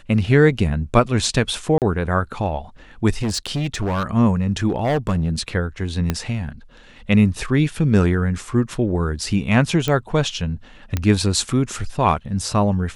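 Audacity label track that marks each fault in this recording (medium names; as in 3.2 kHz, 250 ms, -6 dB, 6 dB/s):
1.780000	1.820000	dropout 38 ms
3.120000	4.060000	clipped -18.5 dBFS
4.680000	5.410000	clipped -15.5 dBFS
6.100000	6.100000	pop -6 dBFS
9.880000	9.880000	pop -8 dBFS
10.970000	10.970000	pop -8 dBFS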